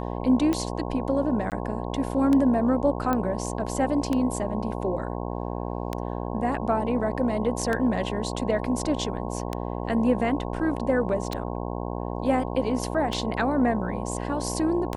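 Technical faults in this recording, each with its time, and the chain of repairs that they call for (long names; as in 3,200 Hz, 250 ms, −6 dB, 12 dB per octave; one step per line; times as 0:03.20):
mains buzz 60 Hz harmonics 18 −31 dBFS
scratch tick 33 1/3 rpm −13 dBFS
0:01.50–0:01.52: drop-out 18 ms
0:03.13: click −13 dBFS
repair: click removal
hum removal 60 Hz, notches 18
repair the gap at 0:01.50, 18 ms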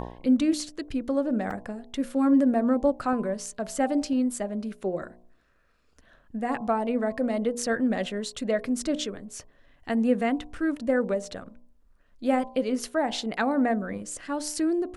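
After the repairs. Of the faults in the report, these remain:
0:03.13: click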